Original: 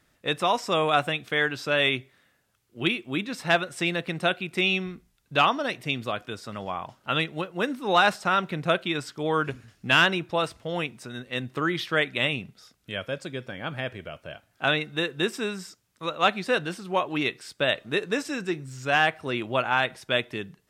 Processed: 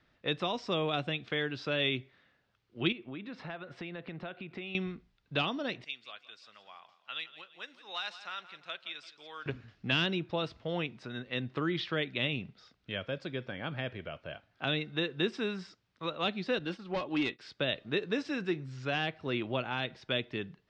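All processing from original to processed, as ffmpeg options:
-filter_complex "[0:a]asettb=1/sr,asplit=3[s0][s1][s2];[s0]atrim=end=2.924[s3];[s1]atrim=start=2.92:end=4.75,asetpts=PTS-STARTPTS,afade=t=in:d=0.004:c=qsin,afade=t=out:st=1.826:d=0.004:c=qsin,highpass=57,aemphasis=mode=reproduction:type=75fm,acompressor=threshold=0.0158:ratio=5:attack=3.2:release=140:knee=1:detection=peak[s4];[s2]atrim=start=4.746[s5];[s3][s4]acrossfade=d=0.004:c1=hsin:c2=qsin[s6];[s6][s5]acrossfade=d=0.004:c1=qsin:c2=hsin,asettb=1/sr,asplit=3[s7][s8][s9];[s7]atrim=end=5.844[s10];[s8]atrim=start=5.84:end=9.46,asetpts=PTS-STARTPTS,afade=t=in:d=0.004:c=qsin,afade=t=out:st=3.616:d=0.004:c=qsin,aderivative,aecho=1:1:170|340|510|680:0.168|0.0739|0.0325|0.0143,atrim=end_sample=159642[s11];[s9]atrim=start=9.456[s12];[s10][s11]acrossfade=d=0.004:c1=hsin:c2=qsin[s13];[s13][s12]acrossfade=d=0.004:c1=qsin:c2=hsin,asettb=1/sr,asplit=3[s14][s15][s16];[s14]atrim=end=16.594[s17];[s15]atrim=start=16.59:end=17.39,asetpts=PTS-STARTPTS,afade=t=in:d=0.004:c=qsin,afade=t=out:st=0.796:d=0.004:c=qsin,agate=range=0.0224:threshold=0.0158:ratio=3:release=100:detection=peak,aecho=1:1:3.6:0.33,atrim=end_sample=35280,volume=11.9,asoftclip=hard,volume=0.0841[s18];[s16]atrim=start=17.386[s19];[s17][s18]acrossfade=d=0.004:c1=hsin:c2=qsin[s20];[s20][s19]acrossfade=d=0.004:c1=qsin:c2=hsin,lowpass=f=4600:w=0.5412,lowpass=f=4600:w=1.3066,acrossover=split=460|3000[s21][s22][s23];[s22]acompressor=threshold=0.02:ratio=6[s24];[s21][s24][s23]amix=inputs=3:normalize=0,volume=0.708"

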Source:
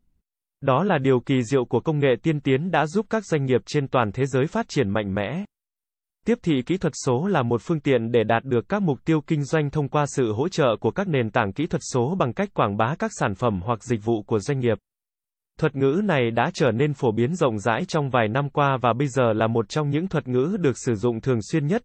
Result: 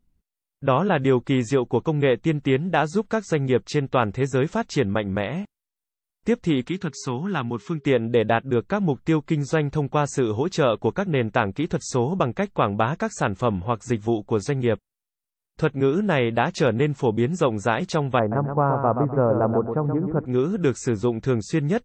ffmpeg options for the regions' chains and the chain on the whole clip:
-filter_complex "[0:a]asettb=1/sr,asplit=3[s0][s1][s2];[s0]atrim=end=6.694[s3];[s1]atrim=start=6.69:end=7.85,asetpts=PTS-STARTPTS,afade=t=in:d=0.004:c=qsin,afade=t=out:st=1.156:d=0.004:c=qsin,equalizer=f=540:t=o:w=0.97:g=-13.5,aeval=exprs='val(0)+0.00251*sin(2*PI*410*n/s)':c=same,highpass=140,lowpass=6000[s4];[s2]atrim=start=7.846[s5];[s3][s4]acrossfade=d=0.004:c1=hsin:c2=qsin[s6];[s6][s5]acrossfade=d=0.004:c1=qsin:c2=hsin,asettb=1/sr,asplit=3[s7][s8][s9];[s7]atrim=end=18.194[s10];[s8]atrim=start=18.19:end=20.26,asetpts=PTS-STARTPTS,afade=t=in:d=0.004:c=qsin,afade=t=out:st=2.066:d=0.004:c=qsin,lowpass=f=1200:w=0.5412,lowpass=f=1200:w=1.3066,aecho=1:1:126|252|378|504:0.447|0.13|0.0376|0.0109,atrim=end_sample=91287[s11];[s9]atrim=start=20.256[s12];[s10][s11]acrossfade=d=0.004:c1=hsin:c2=qsin[s13];[s13][s12]acrossfade=d=0.004:c1=qsin:c2=hsin"

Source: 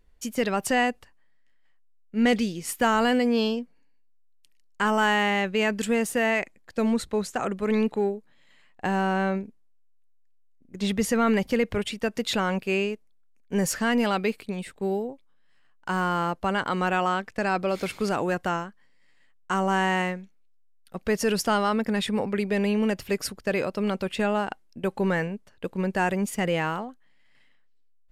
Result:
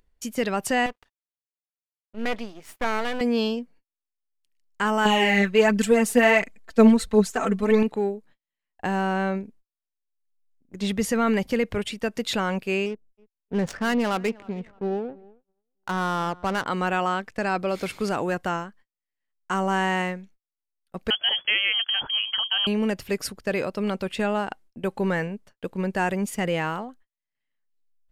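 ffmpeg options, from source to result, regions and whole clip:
-filter_complex "[0:a]asettb=1/sr,asplit=3[s0][s1][s2];[s0]atrim=end=0.864[s3];[s1]atrim=start=0.86:end=3.21,asetpts=PTS-STARTPTS,afade=t=in:d=0.004:c=qsin,afade=t=out:st=2.346:d=0.004:c=qsin,bass=f=250:g=-9,treble=f=4000:g=-11,aeval=exprs='max(val(0),0)':c=same[s4];[s2]atrim=start=3.206[s5];[s3][s4]acrossfade=d=0.004:c1=hsin:c2=qsin[s6];[s6][s5]acrossfade=d=0.004:c1=qsin:c2=hsin,asettb=1/sr,asplit=3[s7][s8][s9];[s7]atrim=end=5.054[s10];[s8]atrim=start=5.05:end=7.83,asetpts=PTS-STARTPTS,afade=t=in:d=0.004:c=qsin,afade=t=out:st=2.776:d=0.004:c=qsin,aecho=1:1:4.5:0.84,atrim=end_sample=122598,aphaser=in_gain=1:out_gain=1:delay=4.9:decay=0.48:speed=1.4:type=triangular[s11];[s9]atrim=start=7.826[s12];[s10][s11]acrossfade=d=0.004:c1=hsin:c2=qsin[s13];[s13][s12]acrossfade=d=0.004:c1=qsin:c2=hsin,asettb=1/sr,asplit=3[s14][s15][s16];[s14]atrim=end=12.864[s17];[s15]atrim=start=12.86:end=16.66,asetpts=PTS-STARTPTS,afade=t=in:d=0.004:c=qsin,afade=t=out:st=3.796:d=0.004:c=qsin,adynamicsmooth=sensitivity=4.5:basefreq=550,asplit=2[s18][s19];[s19]adelay=312,lowpass=f=2300:p=1,volume=0.0708,asplit=2[s20][s21];[s21]adelay=312,lowpass=f=2300:p=1,volume=0.39,asplit=2[s22][s23];[s23]adelay=312,lowpass=f=2300:p=1,volume=0.39[s24];[s18][s20][s22][s24]amix=inputs=4:normalize=0,atrim=end_sample=167580[s25];[s16]atrim=start=16.656[s26];[s17][s25]acrossfade=d=0.004:c1=hsin:c2=qsin[s27];[s27][s26]acrossfade=d=0.004:c1=qsin:c2=hsin,asettb=1/sr,asplit=3[s28][s29][s30];[s28]atrim=end=21.104[s31];[s29]atrim=start=21.1:end=22.67,asetpts=PTS-STARTPTS,afade=t=in:d=0.004:c=qsin,afade=t=out:st=1.566:d=0.004:c=qsin,agate=range=0.251:threshold=0.0282:ratio=16:release=100:detection=peak,lowpass=f=2900:t=q:w=0.5098,lowpass=f=2900:t=q:w=0.6013,lowpass=f=2900:t=q:w=0.9,lowpass=f=2900:t=q:w=2.563,afreqshift=-3400[s32];[s30]atrim=start=22.666[s33];[s31][s32]acrossfade=d=0.004:c1=hsin:c2=qsin[s34];[s34][s33]acrossfade=d=0.004:c1=qsin:c2=hsin,agate=range=0.01:threshold=0.00355:ratio=16:detection=peak,acompressor=mode=upward:threshold=0.01:ratio=2.5"

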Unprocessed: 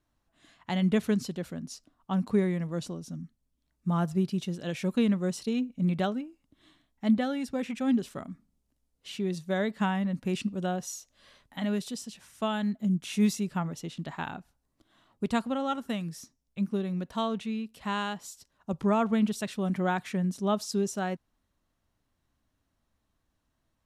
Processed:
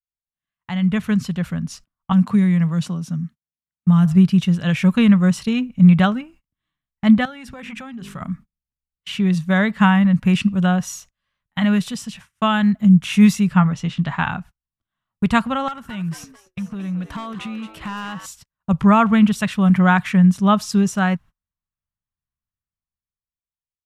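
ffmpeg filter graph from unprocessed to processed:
-filter_complex "[0:a]asettb=1/sr,asplit=3[s0][s1][s2];[s0]atrim=end=2.124[s3];[s1]atrim=start=2.12:end=4.06,asetpts=PTS-STARTPTS,afade=t=in:d=0.004:c=qsin,afade=t=out:st=1.936:d=0.004:c=qsin,highpass=150,acrossover=split=270|3000[s4][s5][s6];[s5]acompressor=threshold=0.00891:ratio=4:attack=3.2:release=140:knee=2.83:detection=peak[s7];[s4][s7][s6]amix=inputs=3:normalize=0[s8];[s2]atrim=start=4.056[s9];[s3][s8]acrossfade=d=0.004:c1=hsin:c2=qsin[s10];[s10][s9]acrossfade=d=0.004:c1=qsin:c2=hsin,asettb=1/sr,asplit=3[s11][s12][s13];[s11]atrim=end=7.254[s14];[s12]atrim=start=7.25:end=8.21,asetpts=PTS-STARTPTS,afade=t=in:d=0.004:c=qsin,afade=t=out:st=0.956:d=0.004:c=qsin,equalizer=f=250:t=o:w=0.22:g=-3.5,bandreject=f=50:t=h:w=6,bandreject=f=100:t=h:w=6,bandreject=f=150:t=h:w=6,bandreject=f=200:t=h:w=6,bandreject=f=250:t=h:w=6,bandreject=f=300:t=h:w=6,bandreject=f=350:t=h:w=6,bandreject=f=400:t=h:w=6,bandreject=f=450:t=h:w=6,acompressor=threshold=0.01:ratio=8:attack=3.2:release=140:knee=1:detection=peak[s15];[s13]atrim=start=8.206[s16];[s14][s15]acrossfade=d=0.004:c1=hsin:c2=qsin[s17];[s17][s16]acrossfade=d=0.004:c1=qsin:c2=hsin,asettb=1/sr,asplit=3[s18][s19][s20];[s18]atrim=end=13.544[s21];[s19]atrim=start=13.54:end=14.31,asetpts=PTS-STARTPTS,afade=t=in:d=0.004:c=qsin,afade=t=out:st=0.766:d=0.004:c=qsin,lowpass=6800,asplit=2[s22][s23];[s23]adelay=16,volume=0.266[s24];[s22][s24]amix=inputs=2:normalize=0,atrim=end_sample=33957[s25];[s20]atrim=start=14.306[s26];[s21][s25]acrossfade=d=0.004:c1=hsin:c2=qsin[s27];[s27][s26]acrossfade=d=0.004:c1=qsin:c2=hsin,asettb=1/sr,asplit=3[s28][s29][s30];[s28]atrim=end=15.684[s31];[s29]atrim=start=15.68:end=18.26,asetpts=PTS-STARTPTS,afade=t=in:d=0.004:c=qsin,afade=t=out:st=2.576:d=0.004:c=qsin,acompressor=threshold=0.0126:ratio=8:attack=3.2:release=140:knee=1:detection=peak,aeval=exprs='0.0168*(abs(mod(val(0)/0.0168+3,4)-2)-1)':c=same,asplit=7[s32][s33][s34][s35][s36][s37][s38];[s33]adelay=223,afreqshift=100,volume=0.316[s39];[s34]adelay=446,afreqshift=200,volume=0.164[s40];[s35]adelay=669,afreqshift=300,volume=0.0851[s41];[s36]adelay=892,afreqshift=400,volume=0.0447[s42];[s37]adelay=1115,afreqshift=500,volume=0.0232[s43];[s38]adelay=1338,afreqshift=600,volume=0.012[s44];[s32][s39][s40][s41][s42][s43][s44]amix=inputs=7:normalize=0,atrim=end_sample=113778[s45];[s30]atrim=start=18.256[s46];[s31][s45]acrossfade=d=0.004:c1=hsin:c2=qsin[s47];[s47][s46]acrossfade=d=0.004:c1=qsin:c2=hsin,agate=range=0.0251:threshold=0.00282:ratio=16:detection=peak,firequalizer=gain_entry='entry(170,0);entry(300,-17);entry(1100,-2);entry(2800,-4);entry(4100,-11)':delay=0.05:min_phase=1,dynaudnorm=f=110:g=21:m=4.47,volume=1.78"

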